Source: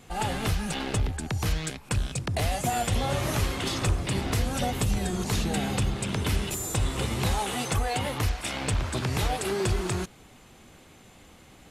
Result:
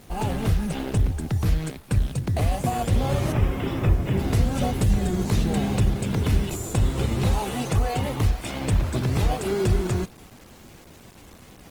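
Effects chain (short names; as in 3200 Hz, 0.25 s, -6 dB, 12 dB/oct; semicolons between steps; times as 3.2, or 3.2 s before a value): tilt shelf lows +3.5 dB, about 740 Hz; in parallel at -9 dB: sample-and-hold 24×; 3.32–4.19 on the sum: polynomial smoothing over 25 samples; bit-crush 8-bit; Opus 20 kbps 48000 Hz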